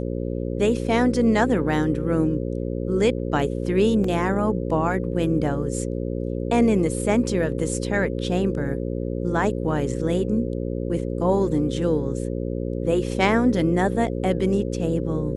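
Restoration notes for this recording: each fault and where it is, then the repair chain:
buzz 60 Hz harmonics 9 -27 dBFS
4.04 gap 3.7 ms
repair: de-hum 60 Hz, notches 9; interpolate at 4.04, 3.7 ms

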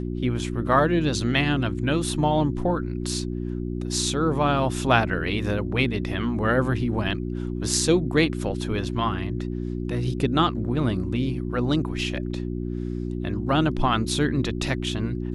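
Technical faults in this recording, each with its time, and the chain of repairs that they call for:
hum 60 Hz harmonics 6 -29 dBFS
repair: de-hum 60 Hz, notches 6

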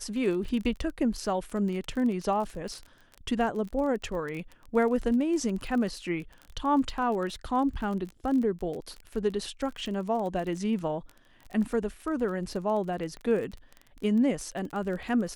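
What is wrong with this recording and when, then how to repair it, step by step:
crackle 26/s -34 dBFS
13.17 pop -29 dBFS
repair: de-click

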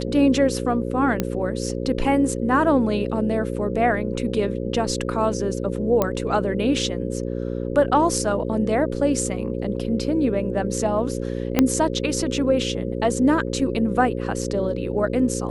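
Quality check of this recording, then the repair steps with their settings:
buzz 60 Hz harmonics 9 -27 dBFS
1.2 pop -8 dBFS
6.02 pop -7 dBFS
11.59 pop -3 dBFS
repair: de-click; de-hum 60 Hz, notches 9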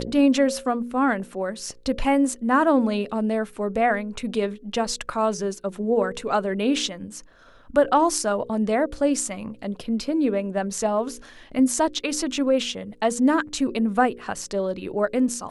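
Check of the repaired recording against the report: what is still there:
11.59 pop

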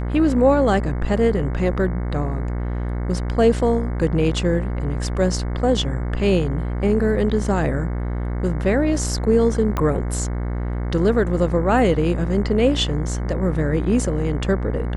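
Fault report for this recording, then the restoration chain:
buzz 60 Hz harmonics 37 -24 dBFS
9.77 pop -10 dBFS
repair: de-click; de-hum 60 Hz, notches 37

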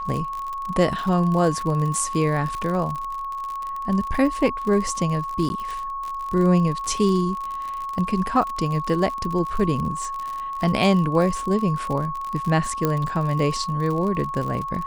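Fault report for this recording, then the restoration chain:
crackle 54/s -27 dBFS
tone 1100 Hz -27 dBFS
5.49–5.5 gap 10 ms
12.85 pop -8 dBFS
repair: de-click; notch 1100 Hz, Q 30; interpolate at 5.49, 10 ms

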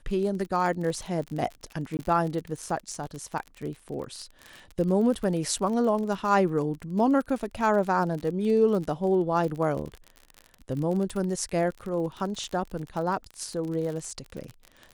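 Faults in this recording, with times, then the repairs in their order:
crackle 43/s -32 dBFS
1.97–1.99 gap 19 ms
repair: de-click; interpolate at 1.97, 19 ms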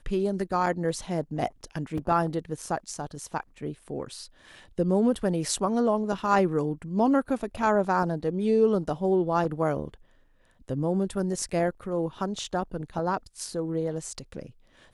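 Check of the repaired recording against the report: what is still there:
none

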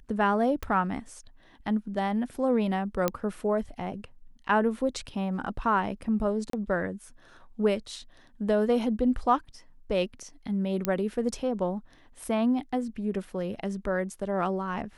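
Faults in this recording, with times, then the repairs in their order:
0.63 pop -19 dBFS
3.08 pop -11 dBFS
6.5–6.53 gap 33 ms
10.85 pop -11 dBFS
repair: de-click; interpolate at 6.5, 33 ms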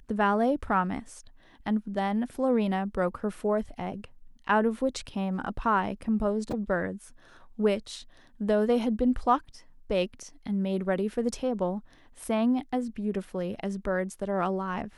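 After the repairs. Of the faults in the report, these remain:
none

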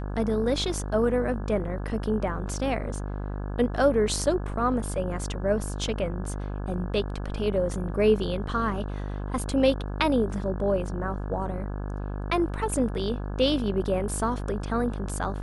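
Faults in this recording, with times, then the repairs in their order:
buzz 50 Hz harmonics 34 -32 dBFS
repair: de-hum 50 Hz, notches 34

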